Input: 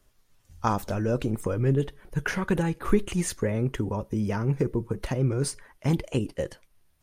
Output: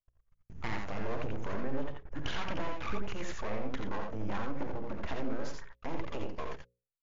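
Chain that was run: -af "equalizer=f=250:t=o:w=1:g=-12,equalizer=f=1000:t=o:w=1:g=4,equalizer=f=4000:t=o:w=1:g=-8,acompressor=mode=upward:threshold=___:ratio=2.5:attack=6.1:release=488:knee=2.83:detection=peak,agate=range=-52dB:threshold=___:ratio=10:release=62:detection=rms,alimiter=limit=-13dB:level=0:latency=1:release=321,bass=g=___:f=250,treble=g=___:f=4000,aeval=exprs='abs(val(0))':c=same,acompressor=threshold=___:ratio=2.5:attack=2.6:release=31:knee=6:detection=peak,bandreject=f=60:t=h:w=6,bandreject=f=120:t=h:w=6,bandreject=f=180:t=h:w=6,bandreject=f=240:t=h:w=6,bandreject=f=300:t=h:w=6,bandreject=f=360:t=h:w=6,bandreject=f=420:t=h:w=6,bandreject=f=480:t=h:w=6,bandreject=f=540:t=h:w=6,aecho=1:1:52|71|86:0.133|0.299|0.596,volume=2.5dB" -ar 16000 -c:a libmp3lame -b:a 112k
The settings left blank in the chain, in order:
-42dB, -47dB, 3, -12, -37dB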